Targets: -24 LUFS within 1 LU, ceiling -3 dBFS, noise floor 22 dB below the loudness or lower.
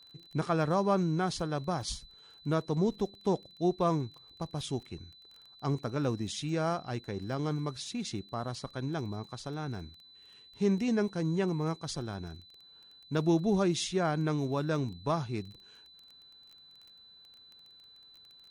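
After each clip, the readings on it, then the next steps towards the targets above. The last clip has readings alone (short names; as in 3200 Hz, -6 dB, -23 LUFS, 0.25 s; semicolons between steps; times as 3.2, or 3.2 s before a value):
ticks 17/s; steady tone 4000 Hz; tone level -54 dBFS; loudness -32.5 LUFS; peak -17.0 dBFS; loudness target -24.0 LUFS
-> de-click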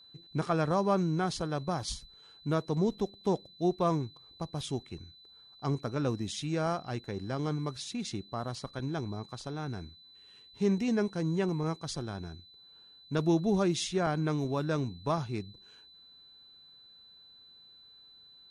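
ticks 0/s; steady tone 4000 Hz; tone level -54 dBFS
-> notch 4000 Hz, Q 30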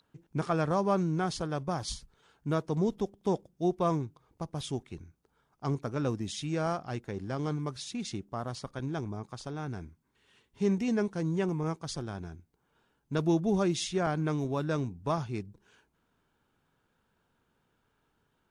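steady tone none; loudness -32.5 LUFS; peak -17.0 dBFS; loudness target -24.0 LUFS
-> gain +8.5 dB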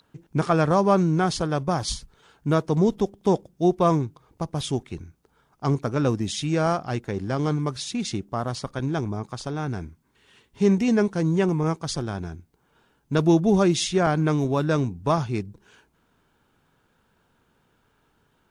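loudness -24.0 LUFS; peak -8.5 dBFS; noise floor -67 dBFS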